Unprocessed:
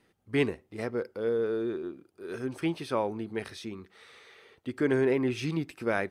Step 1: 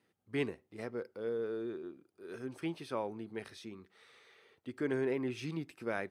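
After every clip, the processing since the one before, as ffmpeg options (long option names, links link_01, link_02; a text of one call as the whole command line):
ffmpeg -i in.wav -af "highpass=90,volume=-8dB" out.wav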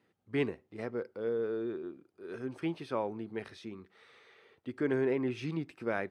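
ffmpeg -i in.wav -af "aemphasis=mode=reproduction:type=50kf,volume=3.5dB" out.wav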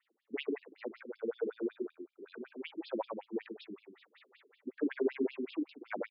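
ffmpeg -i in.wav -af "aecho=1:1:145:0.501,afftfilt=real='re*between(b*sr/1024,260*pow(3900/260,0.5+0.5*sin(2*PI*5.3*pts/sr))/1.41,260*pow(3900/260,0.5+0.5*sin(2*PI*5.3*pts/sr))*1.41)':imag='im*between(b*sr/1024,260*pow(3900/260,0.5+0.5*sin(2*PI*5.3*pts/sr))/1.41,260*pow(3900/260,0.5+0.5*sin(2*PI*5.3*pts/sr))*1.41)':win_size=1024:overlap=0.75,volume=3dB" out.wav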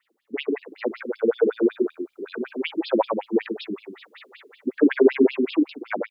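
ffmpeg -i in.wav -af "dynaudnorm=framelen=440:gausssize=3:maxgain=8dB,volume=8dB" out.wav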